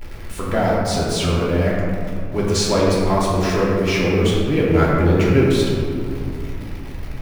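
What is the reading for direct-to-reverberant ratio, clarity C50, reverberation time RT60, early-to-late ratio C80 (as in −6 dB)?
−6.0 dB, −2.0 dB, 2.4 s, 0.0 dB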